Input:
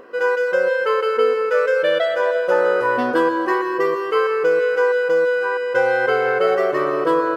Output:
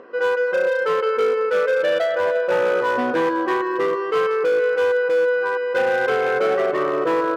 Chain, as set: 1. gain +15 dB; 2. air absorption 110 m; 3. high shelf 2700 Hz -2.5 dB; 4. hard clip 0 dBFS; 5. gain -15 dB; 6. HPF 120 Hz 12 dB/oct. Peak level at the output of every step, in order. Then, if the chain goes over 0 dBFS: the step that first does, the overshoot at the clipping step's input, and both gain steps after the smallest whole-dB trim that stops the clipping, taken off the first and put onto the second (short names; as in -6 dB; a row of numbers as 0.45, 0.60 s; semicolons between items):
+10.5, +9.5, +9.5, 0.0, -15.0, -11.5 dBFS; step 1, 9.5 dB; step 1 +5 dB, step 5 -5 dB